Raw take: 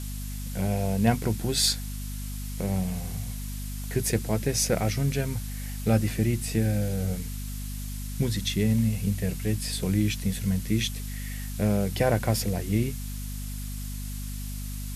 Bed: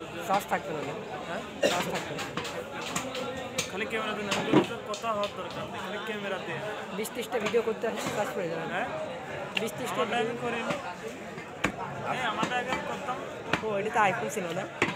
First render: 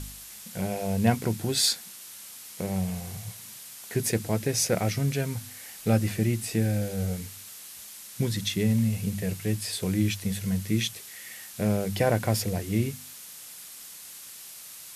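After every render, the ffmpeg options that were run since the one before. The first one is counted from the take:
ffmpeg -i in.wav -af "bandreject=frequency=50:width_type=h:width=4,bandreject=frequency=100:width_type=h:width=4,bandreject=frequency=150:width_type=h:width=4,bandreject=frequency=200:width_type=h:width=4,bandreject=frequency=250:width_type=h:width=4" out.wav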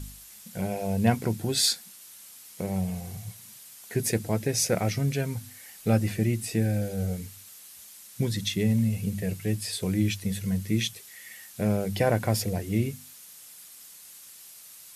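ffmpeg -i in.wav -af "afftdn=noise_reduction=6:noise_floor=-45" out.wav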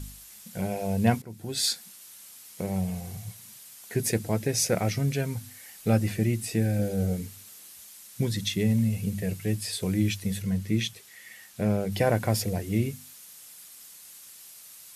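ffmpeg -i in.wav -filter_complex "[0:a]asettb=1/sr,asplit=3[link_01][link_02][link_03];[link_01]atrim=end=6.794[link_04];[link_02]atrim=start=6.79:end=7.73,asetpts=PTS-STARTPTS,afade=type=in:duration=0.004:curve=qsin,afade=type=out:start_time=0.936:duration=0.004:curve=qsin,equalizer=frequency=300:width_type=o:width=1.9:gain=5.5[link_05];[link_03]atrim=start=7.726[link_06];[link_04][link_05]acrossfade=duration=0.004:curve1=hsin:curve2=qsin[link_07];[link_07][link_06]acrossfade=duration=0.004:curve1=qsin:curve2=hsin,asettb=1/sr,asplit=3[link_08][link_09][link_10];[link_08]atrim=end=10.424[link_11];[link_09]atrim=start=10.42:end=11.92,asetpts=PTS-STARTPTS,afade=type=in:duration=0.004:curve=qsin,afade=type=out:start_time=1.496:duration=0.004:curve=qsin,highshelf=frequency=5900:gain=-6.5[link_12];[link_10]atrim=start=11.916[link_13];[link_11][link_12]acrossfade=duration=0.004:curve1=hsin:curve2=qsin[link_14];[link_14][link_13]acrossfade=duration=0.004:curve1=qsin:curve2=hsin,asplit=2[link_15][link_16];[link_15]atrim=end=1.22,asetpts=PTS-STARTPTS,afade=type=out:start_time=1.216:duration=0.004:curve=hsin:silence=0.0749894[link_17];[link_16]atrim=start=1.22,asetpts=PTS-STARTPTS,afade=type=in:duration=0.62:silence=0.0749894[link_18];[link_17][link_18]concat=n=2:v=0:a=1" out.wav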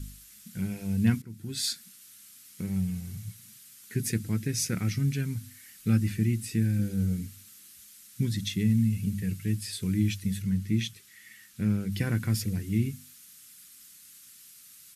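ffmpeg -i in.wav -af "firequalizer=gain_entry='entry(260,0);entry(620,-24);entry(1300,-4)':delay=0.05:min_phase=1" out.wav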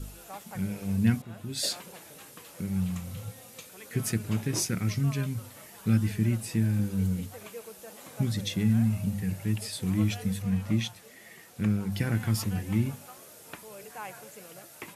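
ffmpeg -i in.wav -i bed.wav -filter_complex "[1:a]volume=-16.5dB[link_01];[0:a][link_01]amix=inputs=2:normalize=0" out.wav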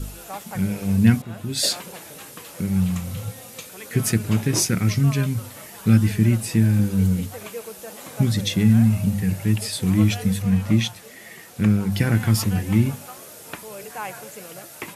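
ffmpeg -i in.wav -af "volume=8.5dB" out.wav

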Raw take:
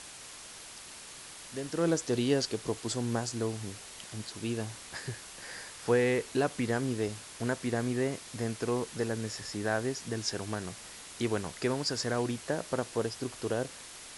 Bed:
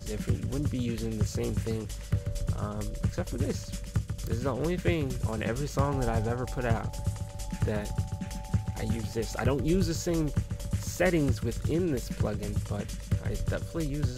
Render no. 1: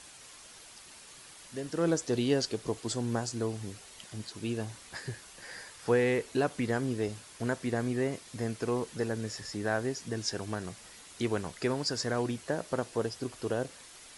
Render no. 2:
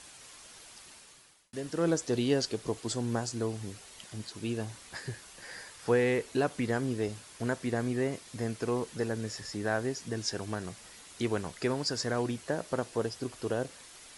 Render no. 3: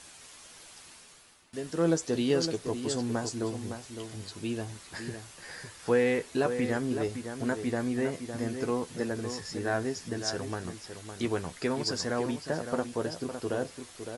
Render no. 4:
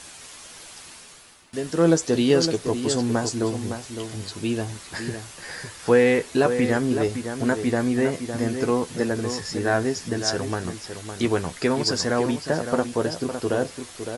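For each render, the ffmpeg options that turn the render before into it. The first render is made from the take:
ffmpeg -i in.wav -af "afftdn=noise_reduction=6:noise_floor=-48" out.wav
ffmpeg -i in.wav -filter_complex "[0:a]asplit=2[link_01][link_02];[link_01]atrim=end=1.53,asetpts=PTS-STARTPTS,afade=type=out:start_time=0.86:duration=0.67[link_03];[link_02]atrim=start=1.53,asetpts=PTS-STARTPTS,afade=type=in:duration=0.004:curve=hsin[link_04];[link_03][link_04]concat=n=2:v=0:a=1" out.wav
ffmpeg -i in.wav -filter_complex "[0:a]asplit=2[link_01][link_02];[link_02]adelay=12,volume=-8dB[link_03];[link_01][link_03]amix=inputs=2:normalize=0,asplit=2[link_04][link_05];[link_05]adelay=559.8,volume=-8dB,highshelf=frequency=4000:gain=-12.6[link_06];[link_04][link_06]amix=inputs=2:normalize=0" out.wav
ffmpeg -i in.wav -af "volume=8dB" out.wav

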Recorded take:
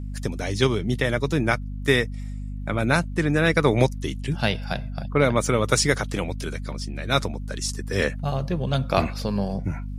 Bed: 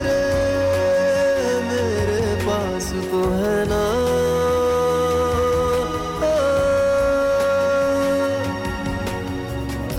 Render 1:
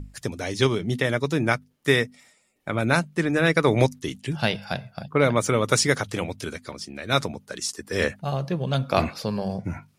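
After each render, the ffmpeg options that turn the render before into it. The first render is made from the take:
ffmpeg -i in.wav -af "bandreject=frequency=50:width_type=h:width=6,bandreject=frequency=100:width_type=h:width=6,bandreject=frequency=150:width_type=h:width=6,bandreject=frequency=200:width_type=h:width=6,bandreject=frequency=250:width_type=h:width=6" out.wav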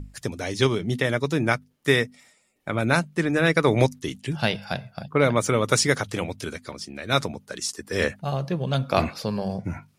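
ffmpeg -i in.wav -af anull out.wav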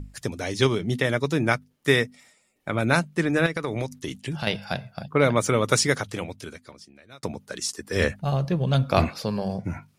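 ffmpeg -i in.wav -filter_complex "[0:a]asettb=1/sr,asplit=3[link_01][link_02][link_03];[link_01]atrim=end=3.464[link_04];[link_02]atrim=start=3.46:end=4.47,asetpts=PTS-STARTPTS,afade=type=in:duration=0.004:curve=qsin,afade=type=out:start_time=1.006:duration=0.004:curve=qsin,acompressor=threshold=-25dB:ratio=4:attack=3.2:release=140:knee=1:detection=peak[link_05];[link_03]atrim=start=4.466[link_06];[link_04][link_05]acrossfade=duration=0.004:curve1=hsin:curve2=qsin[link_07];[link_07][link_06]acrossfade=duration=0.004:curve1=qsin:curve2=hsin,asettb=1/sr,asplit=3[link_08][link_09][link_10];[link_08]atrim=end=7.964[link_11];[link_09]atrim=start=7.96:end=9.05,asetpts=PTS-STARTPTS,afade=type=in:duration=0.004:curve=qsin,afade=type=out:start_time=1.086:duration=0.004:curve=qsin,lowshelf=frequency=99:gain=11[link_12];[link_10]atrim=start=9.046[link_13];[link_11][link_12]acrossfade=duration=0.004:curve1=hsin:curve2=qsin[link_14];[link_14][link_13]acrossfade=duration=0.004:curve1=qsin:curve2=hsin,asplit=2[link_15][link_16];[link_15]atrim=end=7.23,asetpts=PTS-STARTPTS,afade=type=out:start_time=5.71:duration=1.52[link_17];[link_16]atrim=start=7.23,asetpts=PTS-STARTPTS,afade=type=in:duration=0.004:curve=hsin[link_18];[link_17][link_18]concat=n=2:v=0:a=1" out.wav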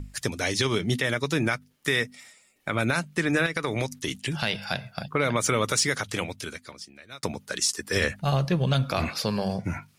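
ffmpeg -i in.wav -filter_complex "[0:a]acrossover=split=1200[link_01][link_02];[link_02]acontrast=66[link_03];[link_01][link_03]amix=inputs=2:normalize=0,alimiter=limit=-12.5dB:level=0:latency=1:release=125" out.wav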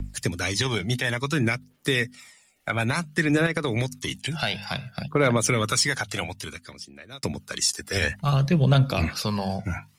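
ffmpeg -i in.wav -filter_complex "[0:a]aphaser=in_gain=1:out_gain=1:delay=1.5:decay=0.48:speed=0.57:type=triangular,acrossover=split=160|1000|2200[link_01][link_02][link_03][link_04];[link_03]volume=21dB,asoftclip=hard,volume=-21dB[link_05];[link_01][link_02][link_05][link_04]amix=inputs=4:normalize=0" out.wav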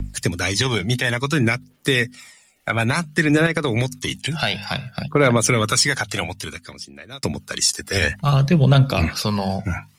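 ffmpeg -i in.wav -af "volume=5dB,alimiter=limit=-3dB:level=0:latency=1" out.wav

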